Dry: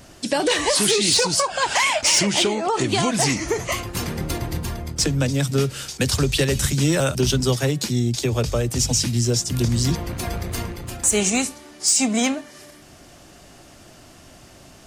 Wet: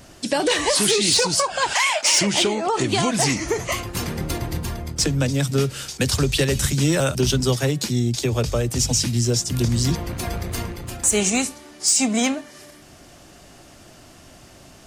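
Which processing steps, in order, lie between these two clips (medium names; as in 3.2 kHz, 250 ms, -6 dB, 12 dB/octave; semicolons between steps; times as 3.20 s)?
1.73–2.20 s: high-pass 870 Hz -> 280 Hz 12 dB/octave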